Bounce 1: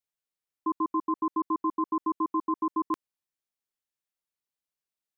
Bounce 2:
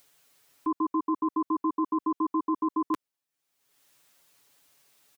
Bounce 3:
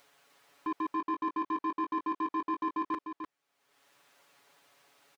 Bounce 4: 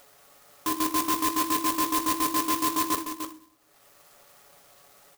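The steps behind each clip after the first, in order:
low-shelf EQ 70 Hz −11 dB; comb filter 7.1 ms, depth 85%; upward compression, threshold −45 dBFS; level +1 dB
brickwall limiter −24.5 dBFS, peak gain reduction 5.5 dB; mid-hump overdrive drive 17 dB, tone 1,000 Hz, clips at −24.5 dBFS; single-tap delay 300 ms −7 dB
convolution reverb RT60 0.55 s, pre-delay 3 ms, DRR 9 dB; converter with an unsteady clock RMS 0.11 ms; level +8.5 dB

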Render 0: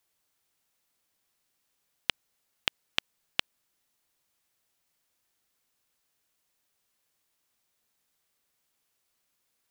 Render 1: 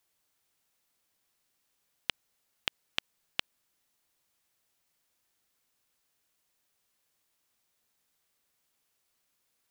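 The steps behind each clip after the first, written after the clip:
brickwall limiter −7.5 dBFS, peak gain reduction 4 dB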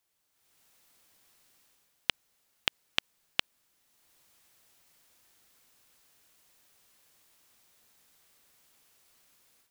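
automatic gain control gain up to 14 dB
level −2.5 dB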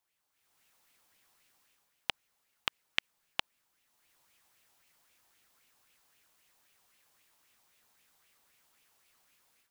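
auto-filter bell 3.8 Hz 800–2,700 Hz +9 dB
level −5.5 dB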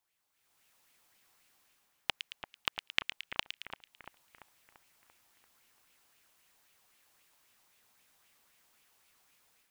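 echo with a time of its own for lows and highs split 1,900 Hz, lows 341 ms, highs 111 ms, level −7.5 dB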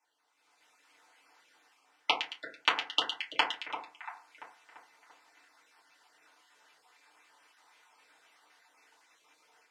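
time-frequency cells dropped at random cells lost 23%
band-pass filter 490–6,200 Hz
feedback delay network reverb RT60 0.4 s, low-frequency decay 1.2×, high-frequency decay 0.35×, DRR −7 dB
level +3.5 dB

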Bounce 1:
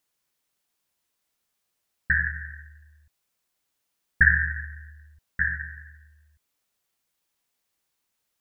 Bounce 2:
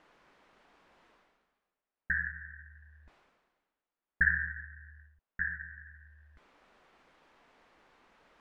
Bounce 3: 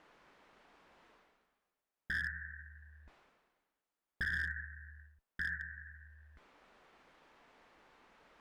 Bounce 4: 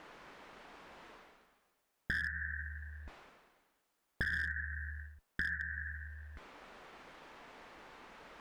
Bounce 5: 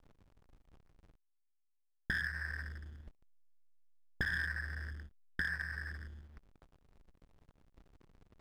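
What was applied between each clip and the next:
low-pass filter 1,600 Hz 12 dB per octave; reversed playback; upward compression, threshold −35 dBFS; reversed playback; parametric band 100 Hz −14 dB 1 octave; level −5 dB
tuned comb filter 440 Hz, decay 0.73 s, mix 50%; brickwall limiter −31.5 dBFS, peak gain reduction 11.5 dB; asymmetric clip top −37.5 dBFS, bottom −34.5 dBFS; level +5.5 dB
downward compressor 4 to 1, threshold −45 dBFS, peak gain reduction 10 dB; level +10 dB
slack as between gear wheels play −41.5 dBFS; level +1 dB

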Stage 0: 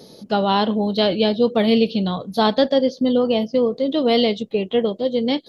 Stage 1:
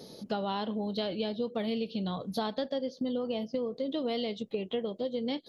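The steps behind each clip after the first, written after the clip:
downward compressor 5 to 1, threshold −26 dBFS, peak gain reduction 13.5 dB
level −4.5 dB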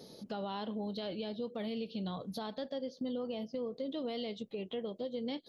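brickwall limiter −25 dBFS, peak gain reduction 6 dB
level −4.5 dB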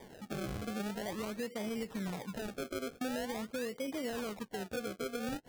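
sample-and-hold swept by an LFO 32×, swing 100% 0.45 Hz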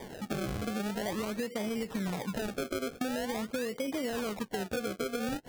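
downward compressor, threshold −39 dBFS, peak gain reduction 6 dB
level +8.5 dB

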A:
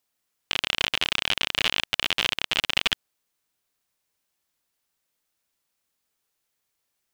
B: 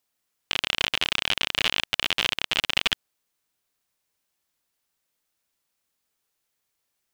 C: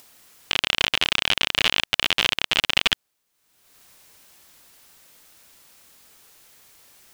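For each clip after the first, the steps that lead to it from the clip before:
no processing that can be heard
upward compression, threshold −38 dBFS; level +3.5 dB

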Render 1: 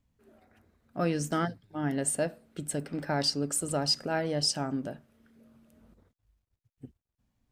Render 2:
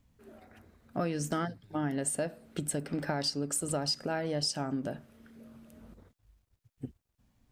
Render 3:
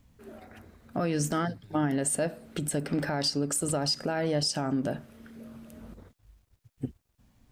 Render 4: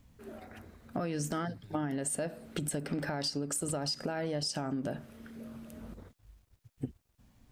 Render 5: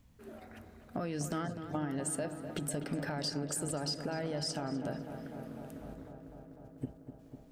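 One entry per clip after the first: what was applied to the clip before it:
downward compressor 4 to 1, threshold −37 dBFS, peak gain reduction 12.5 dB; level +6.5 dB
brickwall limiter −25.5 dBFS, peak gain reduction 7.5 dB; level +6.5 dB
downward compressor 5 to 1, threshold −31 dBFS, peak gain reduction 8 dB
feedback echo with a low-pass in the loop 250 ms, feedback 84%, low-pass 2,700 Hz, level −10 dB; level −2.5 dB

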